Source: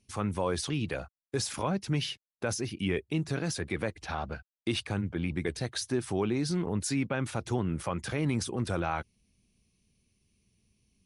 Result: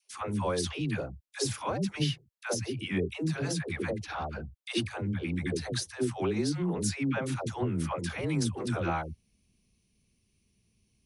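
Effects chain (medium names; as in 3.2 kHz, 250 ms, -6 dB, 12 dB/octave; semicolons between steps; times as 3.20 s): phase dispersion lows, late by 121 ms, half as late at 500 Hz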